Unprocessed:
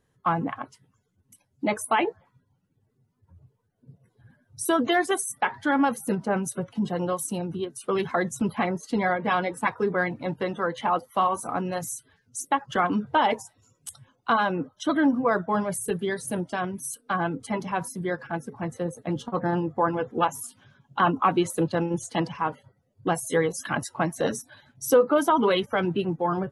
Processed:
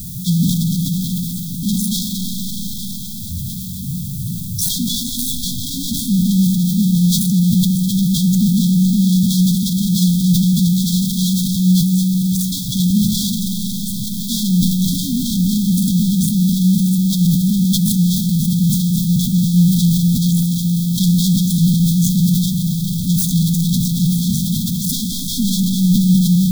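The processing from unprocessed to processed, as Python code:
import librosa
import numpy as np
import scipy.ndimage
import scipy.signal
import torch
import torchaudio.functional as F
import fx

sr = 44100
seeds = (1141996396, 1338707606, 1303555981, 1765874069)

p1 = fx.self_delay(x, sr, depth_ms=0.24)
p2 = fx.rev_freeverb(p1, sr, rt60_s=4.0, hf_ratio=0.5, predelay_ms=105, drr_db=8.5)
p3 = fx.level_steps(p2, sr, step_db=22)
p4 = p2 + (p3 * 10.0 ** (2.0 / 20.0))
p5 = fx.tilt_eq(p4, sr, slope=-3.5)
p6 = fx.comb_fb(p5, sr, f0_hz=180.0, decay_s=0.17, harmonics='odd', damping=0.0, mix_pct=90)
p7 = fx.power_curve(p6, sr, exponent=0.35)
p8 = fx.dmg_noise_colour(p7, sr, seeds[0], colour='blue', level_db=-44.0)
p9 = fx.brickwall_bandstop(p8, sr, low_hz=260.0, high_hz=3200.0)
p10 = fx.high_shelf(p9, sr, hz=3200.0, db=9.0)
p11 = fx.echo_stepped(p10, sr, ms=103, hz=170.0, octaves=1.4, feedback_pct=70, wet_db=-7)
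p12 = fx.sustainer(p11, sr, db_per_s=33.0)
y = p12 * 10.0 ** (2.0 / 20.0)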